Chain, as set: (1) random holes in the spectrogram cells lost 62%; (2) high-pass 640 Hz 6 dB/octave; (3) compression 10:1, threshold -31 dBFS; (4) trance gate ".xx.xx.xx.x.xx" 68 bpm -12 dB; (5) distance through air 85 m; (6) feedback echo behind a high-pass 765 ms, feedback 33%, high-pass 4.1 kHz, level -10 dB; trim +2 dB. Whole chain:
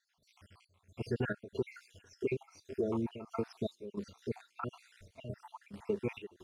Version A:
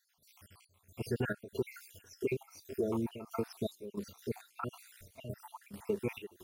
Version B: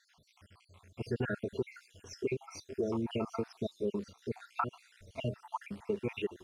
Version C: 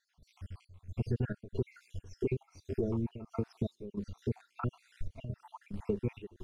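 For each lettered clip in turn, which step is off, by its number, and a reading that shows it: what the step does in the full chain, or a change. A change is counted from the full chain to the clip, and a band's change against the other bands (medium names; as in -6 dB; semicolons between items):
5, 4 kHz band +2.0 dB; 4, loudness change +1.5 LU; 2, 125 Hz band +9.5 dB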